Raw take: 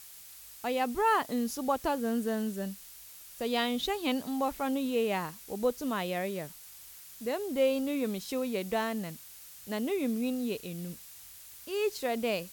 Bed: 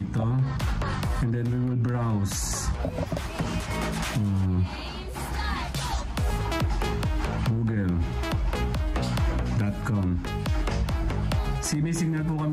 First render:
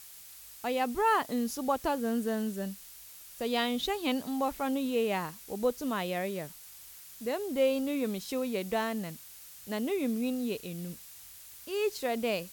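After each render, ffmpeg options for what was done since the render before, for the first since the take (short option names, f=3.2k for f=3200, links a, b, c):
-af anull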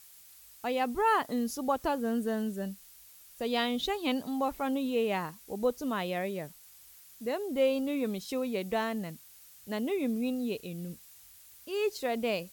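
-af "afftdn=nr=6:nf=-50"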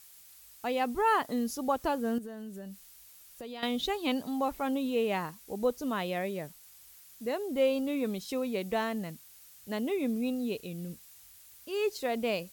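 -filter_complex "[0:a]asettb=1/sr,asplit=3[a][b][c];[a]atrim=end=2.184[d];[b]atrim=start=2.18:end=3.63,asetpts=PTS-STARTPTS,afade=t=in:d=0.004:c=qsin,afade=t=out:st=1.446:d=0.004:c=qsin,acompressor=threshold=-40dB:ratio=4:attack=3.2:release=140:knee=1:detection=peak[e];[c]atrim=start=3.626[f];[d][e]acrossfade=d=0.004:c1=hsin:c2=qsin[g];[g][f]acrossfade=d=0.004:c1=qsin:c2=hsin"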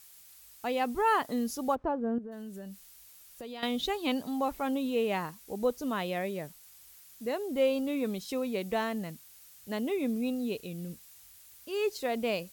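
-filter_complex "[0:a]asplit=3[a][b][c];[a]afade=t=out:st=1.74:d=0.02[d];[b]lowpass=1.1k,afade=t=in:st=1.74:d=0.02,afade=t=out:st=2.31:d=0.02[e];[c]afade=t=in:st=2.31:d=0.02[f];[d][e][f]amix=inputs=3:normalize=0"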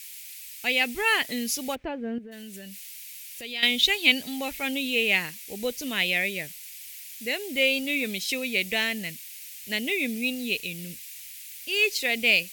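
-af "highshelf=f=1.6k:t=q:w=3:g=12"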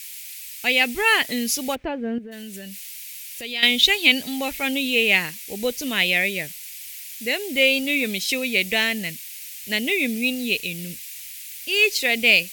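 -af "volume=5dB,alimiter=limit=-1dB:level=0:latency=1"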